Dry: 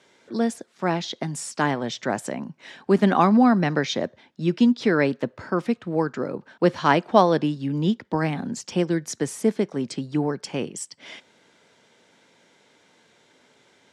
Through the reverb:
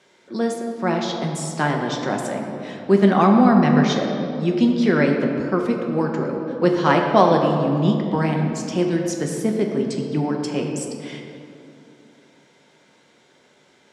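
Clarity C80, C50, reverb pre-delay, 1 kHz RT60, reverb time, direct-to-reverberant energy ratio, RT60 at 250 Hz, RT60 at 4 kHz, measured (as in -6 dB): 4.5 dB, 3.5 dB, 5 ms, 2.4 s, 2.7 s, 1.0 dB, 3.4 s, 1.4 s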